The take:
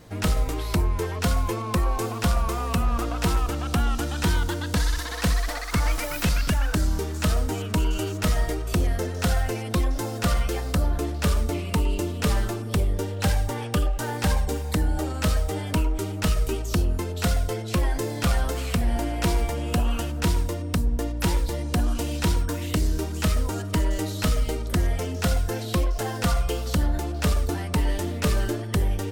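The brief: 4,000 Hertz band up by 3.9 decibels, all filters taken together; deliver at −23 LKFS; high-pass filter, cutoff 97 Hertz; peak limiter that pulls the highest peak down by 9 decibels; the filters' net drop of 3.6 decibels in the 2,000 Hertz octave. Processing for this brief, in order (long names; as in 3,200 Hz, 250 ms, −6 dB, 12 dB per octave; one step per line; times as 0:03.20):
high-pass filter 97 Hz
parametric band 2,000 Hz −7 dB
parametric band 4,000 Hz +7 dB
level +8 dB
brickwall limiter −12 dBFS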